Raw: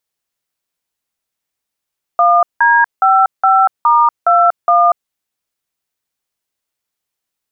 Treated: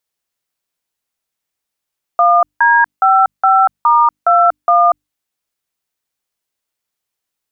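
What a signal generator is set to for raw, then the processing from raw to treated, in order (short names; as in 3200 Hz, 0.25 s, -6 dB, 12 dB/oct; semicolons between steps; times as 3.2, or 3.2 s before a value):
DTMF "1D55*21", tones 0.239 s, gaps 0.176 s, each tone -9.5 dBFS
notches 50/100/150/200/250/300 Hz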